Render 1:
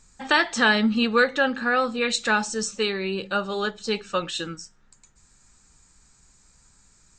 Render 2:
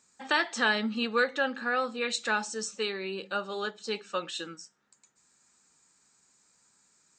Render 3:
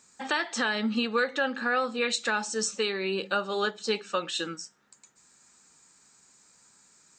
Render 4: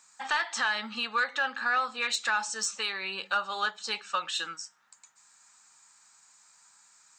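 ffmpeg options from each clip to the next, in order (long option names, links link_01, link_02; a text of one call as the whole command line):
ffmpeg -i in.wav -af "highpass=240,volume=-6.5dB" out.wav
ffmpeg -i in.wav -af "alimiter=limit=-23dB:level=0:latency=1:release=305,volume=6.5dB" out.wav
ffmpeg -i in.wav -af "lowshelf=frequency=610:width_type=q:width=1.5:gain=-13,asoftclip=type=tanh:threshold=-16dB" out.wav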